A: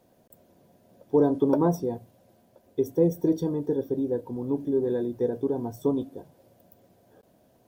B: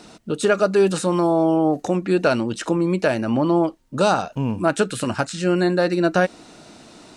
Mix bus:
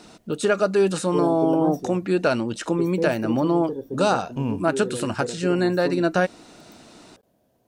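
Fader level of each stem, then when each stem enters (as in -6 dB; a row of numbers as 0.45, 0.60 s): -4.5, -2.5 dB; 0.00, 0.00 s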